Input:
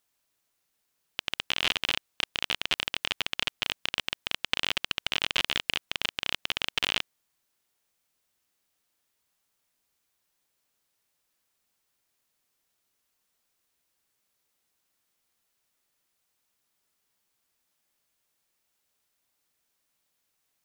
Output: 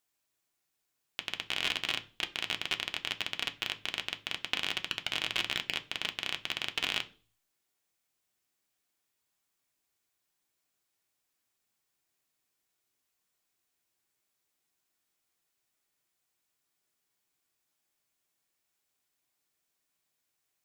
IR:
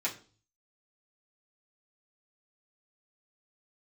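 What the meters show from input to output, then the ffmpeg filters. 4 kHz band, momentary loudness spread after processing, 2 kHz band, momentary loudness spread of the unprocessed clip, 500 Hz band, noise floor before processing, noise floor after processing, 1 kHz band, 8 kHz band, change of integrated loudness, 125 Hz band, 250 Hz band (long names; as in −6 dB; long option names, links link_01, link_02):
−4.5 dB, 6 LU, −4.0 dB, 6 LU, −4.5 dB, −78 dBFS, −82 dBFS, −4.5 dB, −4.0 dB, −4.5 dB, −4.0 dB, −3.5 dB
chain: -filter_complex "[0:a]asplit=2[link_01][link_02];[link_02]lowshelf=frequency=180:gain=10.5[link_03];[1:a]atrim=start_sample=2205[link_04];[link_03][link_04]afir=irnorm=-1:irlink=0,volume=-8.5dB[link_05];[link_01][link_05]amix=inputs=2:normalize=0,volume=-7dB"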